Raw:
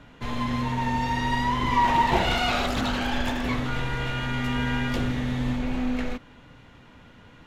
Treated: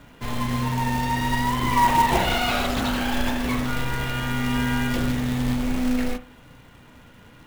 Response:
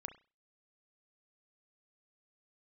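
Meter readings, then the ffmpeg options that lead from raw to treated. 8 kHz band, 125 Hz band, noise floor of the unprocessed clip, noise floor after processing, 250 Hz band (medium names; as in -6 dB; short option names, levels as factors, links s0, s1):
+8.0 dB, +2.5 dB, -51 dBFS, -49 dBFS, +3.0 dB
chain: -filter_complex "[0:a]acrusher=bits=3:mode=log:mix=0:aa=0.000001,asplit=2[s0][s1];[1:a]atrim=start_sample=2205[s2];[s1][s2]afir=irnorm=-1:irlink=0,volume=2.82[s3];[s0][s3]amix=inputs=2:normalize=0,volume=0.422"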